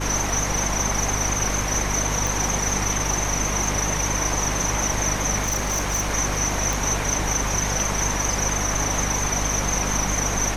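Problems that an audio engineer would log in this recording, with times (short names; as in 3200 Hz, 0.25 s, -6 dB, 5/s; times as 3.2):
hum 50 Hz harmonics 6 -28 dBFS
2.27 pop
3.67 gap 2.6 ms
5.42–6.11 clipped -19 dBFS
6.73 pop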